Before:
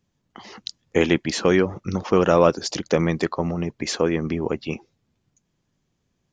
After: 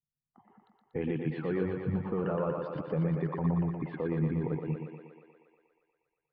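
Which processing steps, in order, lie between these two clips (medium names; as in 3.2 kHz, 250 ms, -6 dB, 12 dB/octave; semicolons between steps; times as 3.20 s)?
expander on every frequency bin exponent 1.5; level-controlled noise filter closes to 1.1 kHz, open at -16.5 dBFS; peaking EQ 150 Hz +12 dB 0.34 oct; peak limiter -17 dBFS, peak gain reduction 13 dB; Gaussian low-pass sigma 4.1 samples; thinning echo 119 ms, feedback 74%, high-pass 230 Hz, level -3.5 dB; trim -4.5 dB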